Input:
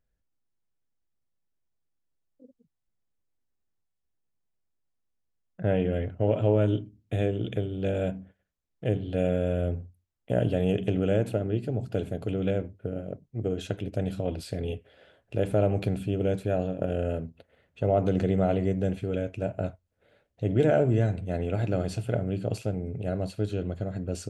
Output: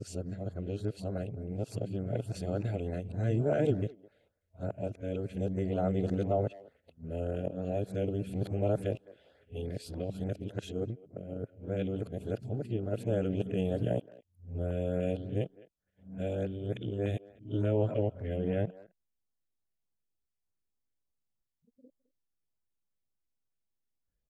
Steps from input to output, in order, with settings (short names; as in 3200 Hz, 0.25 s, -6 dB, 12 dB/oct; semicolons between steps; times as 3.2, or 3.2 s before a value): whole clip reversed; speakerphone echo 0.21 s, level -19 dB; LFO notch saw up 3.4 Hz 770–3600 Hz; gain -5.5 dB